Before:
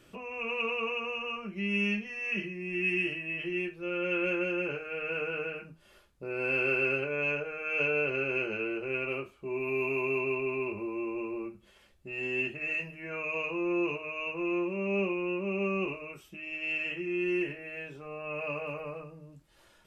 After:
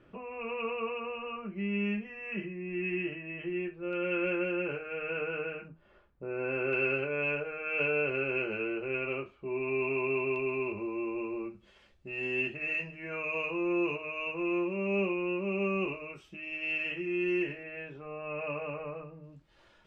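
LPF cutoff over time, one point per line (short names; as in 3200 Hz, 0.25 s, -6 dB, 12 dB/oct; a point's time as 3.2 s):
1800 Hz
from 3.93 s 2700 Hz
from 5.68 s 1700 Hz
from 6.73 s 3200 Hz
from 10.36 s 5400 Hz
from 17.63 s 2700 Hz
from 19.24 s 4200 Hz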